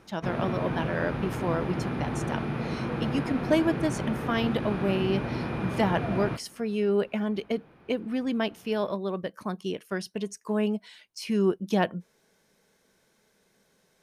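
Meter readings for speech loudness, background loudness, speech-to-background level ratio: −30.0 LKFS, −32.0 LKFS, 2.0 dB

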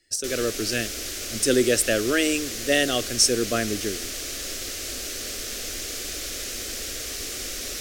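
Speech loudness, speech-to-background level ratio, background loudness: −23.5 LKFS, 6.5 dB, −30.0 LKFS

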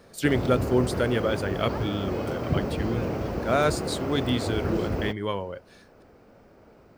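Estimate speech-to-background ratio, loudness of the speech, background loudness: 2.0 dB, −28.5 LKFS, −30.5 LKFS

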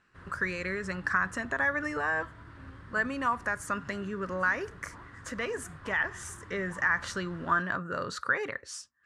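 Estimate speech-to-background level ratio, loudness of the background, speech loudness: 18.0 dB, −49.5 LKFS, −31.5 LKFS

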